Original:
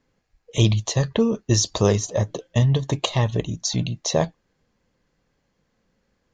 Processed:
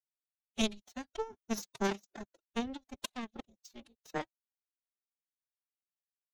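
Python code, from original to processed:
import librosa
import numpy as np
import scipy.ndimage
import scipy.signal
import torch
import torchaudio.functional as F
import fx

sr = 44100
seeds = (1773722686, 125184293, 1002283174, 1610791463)

y = fx.power_curve(x, sr, exponent=3.0)
y = fx.pitch_keep_formants(y, sr, semitones=11.5)
y = y * librosa.db_to_amplitude(-3.0)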